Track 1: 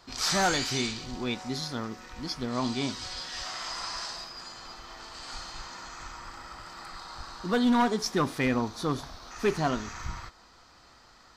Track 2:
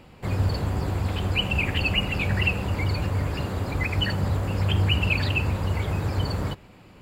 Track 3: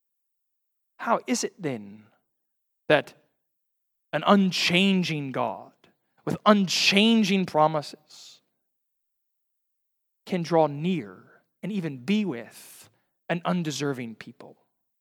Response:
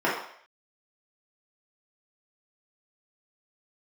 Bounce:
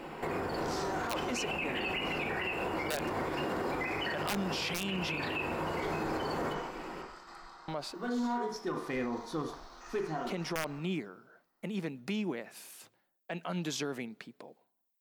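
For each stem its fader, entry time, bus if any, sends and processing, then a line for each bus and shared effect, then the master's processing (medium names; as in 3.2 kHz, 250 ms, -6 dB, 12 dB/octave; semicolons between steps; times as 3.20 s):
-9.5 dB, 0.50 s, send -18 dB, bass shelf 320 Hz +7.5 dB; gate -43 dBFS, range -14 dB; auto duck -10 dB, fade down 0.35 s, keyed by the third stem
+0.5 dB, 0.00 s, send -8 dB, compression 6:1, threshold -31 dBFS, peak gain reduction 13 dB
-3.0 dB, 0.00 s, muted 5.24–7.68 s, no send, saturation -5.5 dBFS, distortion -22 dB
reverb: on, RT60 0.60 s, pre-delay 3 ms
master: peaking EQ 83 Hz -12 dB 1.8 oct; integer overflow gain 14.5 dB; peak limiter -26 dBFS, peak gain reduction 11.5 dB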